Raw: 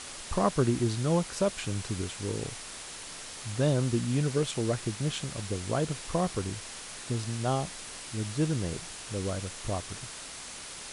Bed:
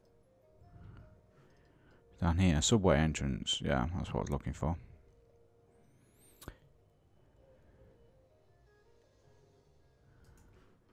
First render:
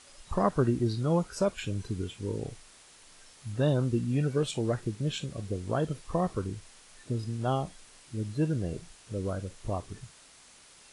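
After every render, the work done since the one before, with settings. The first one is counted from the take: noise print and reduce 13 dB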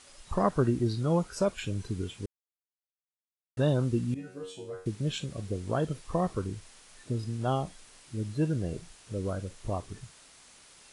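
2.26–3.57 mute; 4.14–4.86 resonator 93 Hz, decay 0.43 s, mix 100%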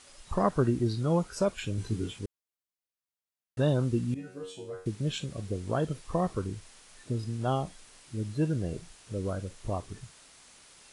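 1.76–2.19 doubler 18 ms -3 dB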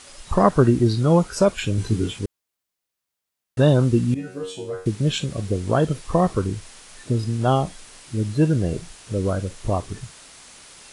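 gain +10 dB

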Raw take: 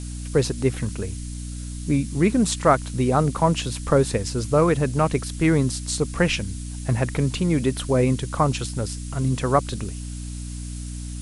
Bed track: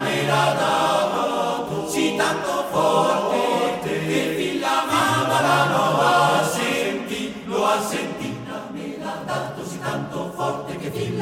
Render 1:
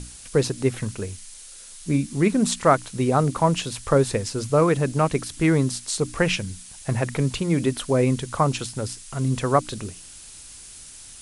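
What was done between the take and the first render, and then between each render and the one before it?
notches 60/120/180/240/300 Hz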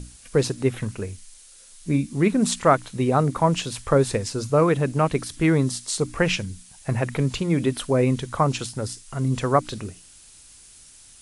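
noise print and reduce 6 dB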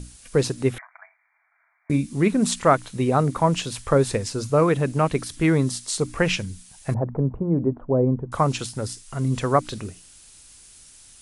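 0.78–1.9 brick-wall FIR band-pass 630–2400 Hz; 6.94–8.32 inverse Chebyshev low-pass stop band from 5300 Hz, stop band 80 dB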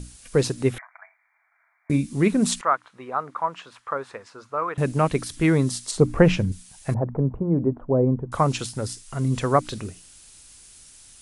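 2.61–4.78 band-pass 1200 Hz, Q 2; 5.91–6.52 tilt shelf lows +8 dB, about 1400 Hz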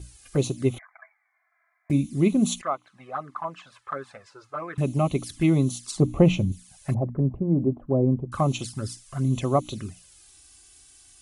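envelope flanger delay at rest 3 ms, full sweep at -20.5 dBFS; notch comb 470 Hz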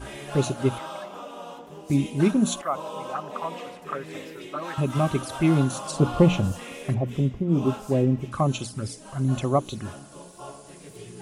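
add bed track -17 dB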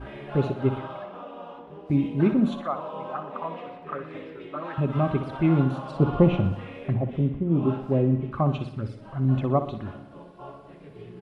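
air absorption 420 m; feedback echo 61 ms, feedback 56%, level -11 dB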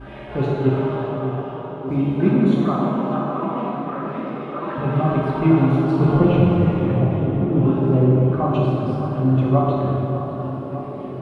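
on a send: tape echo 0.6 s, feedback 80%, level -8 dB, low-pass 1400 Hz; on the sum: plate-style reverb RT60 2.9 s, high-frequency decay 0.65×, DRR -4.5 dB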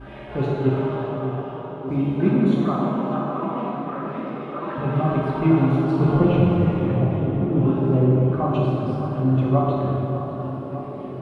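gain -2 dB

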